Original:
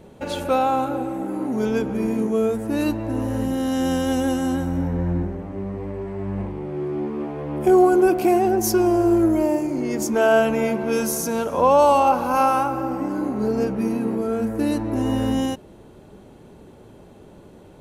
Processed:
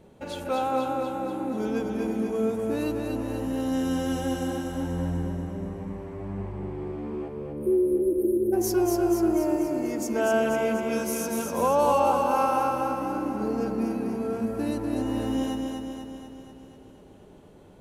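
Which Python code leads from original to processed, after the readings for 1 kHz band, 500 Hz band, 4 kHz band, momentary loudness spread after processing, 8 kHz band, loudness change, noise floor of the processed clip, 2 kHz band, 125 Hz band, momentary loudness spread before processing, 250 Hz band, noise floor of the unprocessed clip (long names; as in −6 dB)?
−6.0 dB, −5.5 dB, −5.5 dB, 12 LU, −5.5 dB, −5.5 dB, −50 dBFS, −6.0 dB, −6.0 dB, 12 LU, −5.5 dB, −47 dBFS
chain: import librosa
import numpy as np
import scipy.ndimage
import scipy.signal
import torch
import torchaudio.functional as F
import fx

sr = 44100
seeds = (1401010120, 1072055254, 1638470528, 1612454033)

y = fx.spec_erase(x, sr, start_s=7.29, length_s=1.24, low_hz=640.0, high_hz=8700.0)
y = fx.echo_feedback(y, sr, ms=243, feedback_pct=60, wet_db=-4.0)
y = y * librosa.db_to_amplitude(-7.5)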